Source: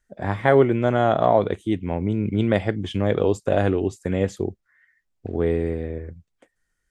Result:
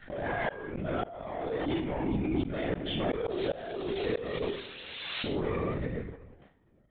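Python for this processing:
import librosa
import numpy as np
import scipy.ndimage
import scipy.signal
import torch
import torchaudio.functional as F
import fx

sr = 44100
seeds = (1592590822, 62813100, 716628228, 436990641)

y = fx.rider(x, sr, range_db=4, speed_s=0.5)
y = fx.room_early_taps(y, sr, ms=(36, 46), db=(-10.0, -12.5))
y = fx.room_shoebox(y, sr, seeds[0], volume_m3=2600.0, walls='mixed', distance_m=0.44)
y = fx.leveller(y, sr, passes=2)
y = fx.dmg_noise_colour(y, sr, seeds[1], colour='violet', level_db=-12.0, at=(3.28, 5.31), fade=0.02)
y = fx.resonator_bank(y, sr, root=39, chord='fifth', decay_s=0.43)
y = fx.lpc_vocoder(y, sr, seeds[2], excitation='whisper', order=16)
y = fx.low_shelf(y, sr, hz=79.0, db=-11.5)
y = fx.gate_flip(y, sr, shuts_db=-19.0, range_db=-29)
y = fx.pre_swell(y, sr, db_per_s=29.0)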